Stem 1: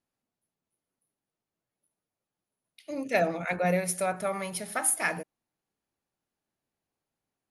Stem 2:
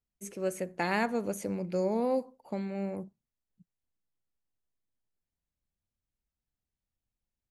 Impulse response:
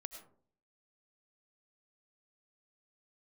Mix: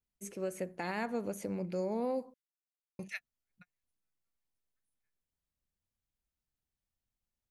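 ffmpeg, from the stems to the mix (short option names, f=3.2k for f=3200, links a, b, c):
-filter_complex "[0:a]highpass=f=1.4k:w=0.5412,highpass=f=1.4k:w=1.3066,volume=-6.5dB[a];[1:a]adynamicequalizer=threshold=0.00141:dfrequency=7600:dqfactor=0.93:tfrequency=7600:tqfactor=0.93:attack=5:release=100:ratio=0.375:range=2:mode=cutabove:tftype=bell,volume=-2dB,asplit=3[b][c][d];[b]atrim=end=2.34,asetpts=PTS-STARTPTS,afade=t=out:st=2.336:d=0.004:c=hsin[e];[c]atrim=start=2.34:end=2.99,asetpts=PTS-STARTPTS,volume=0[f];[d]atrim=start=2.99,asetpts=PTS-STARTPTS,afade=t=in:d=0.004:c=hsin[g];[e][f][g]concat=n=3:v=0:a=1,asplit=2[h][i];[i]apad=whole_len=331176[j];[a][j]sidechaingate=range=-59dB:threshold=-57dB:ratio=16:detection=peak[k];[k][h]amix=inputs=2:normalize=0,alimiter=level_in=2.5dB:limit=-24dB:level=0:latency=1:release=134,volume=-2.5dB"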